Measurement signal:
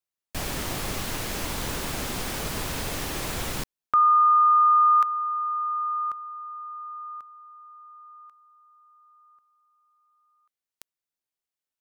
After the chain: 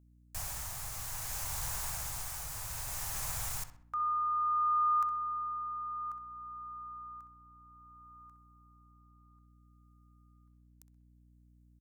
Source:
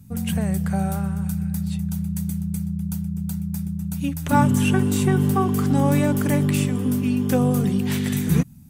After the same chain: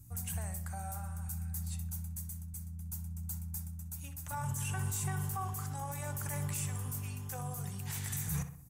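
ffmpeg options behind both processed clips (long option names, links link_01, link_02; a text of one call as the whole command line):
ffmpeg -i in.wav -filter_complex "[0:a]firequalizer=gain_entry='entry(120,0);entry(230,-25);entry(780,-1);entry(3200,-7);entry(6700,6)':delay=0.05:min_phase=1,alimiter=limit=-19.5dB:level=0:latency=1:release=15,tremolo=f=0.6:d=0.39,asplit=2[link_01][link_02];[link_02]adelay=64,lowpass=frequency=3000:poles=1,volume=-9.5dB,asplit=2[link_03][link_04];[link_04]adelay=64,lowpass=frequency=3000:poles=1,volume=0.47,asplit=2[link_05][link_06];[link_06]adelay=64,lowpass=frequency=3000:poles=1,volume=0.47,asplit=2[link_07][link_08];[link_08]adelay=64,lowpass=frequency=3000:poles=1,volume=0.47,asplit=2[link_09][link_10];[link_10]adelay=64,lowpass=frequency=3000:poles=1,volume=0.47[link_11];[link_03][link_05][link_07][link_09][link_11]amix=inputs=5:normalize=0[link_12];[link_01][link_12]amix=inputs=2:normalize=0,aeval=exprs='val(0)+0.002*(sin(2*PI*60*n/s)+sin(2*PI*2*60*n/s)/2+sin(2*PI*3*60*n/s)/3+sin(2*PI*4*60*n/s)/4+sin(2*PI*5*60*n/s)/5)':channel_layout=same,volume=-7dB" out.wav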